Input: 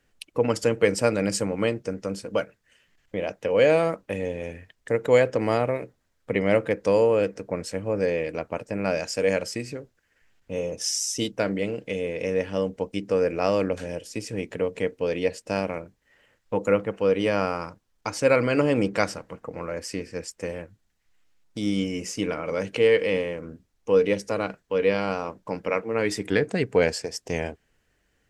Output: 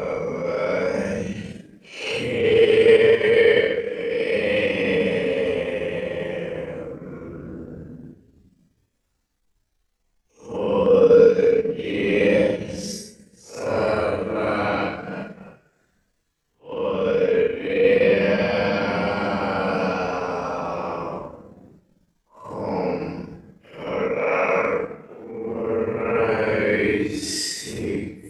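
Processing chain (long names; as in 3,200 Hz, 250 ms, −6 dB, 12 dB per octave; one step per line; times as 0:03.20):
extreme stretch with random phases 7.5×, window 0.05 s, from 0:22.48
transient designer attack −10 dB, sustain −6 dB
level +4.5 dB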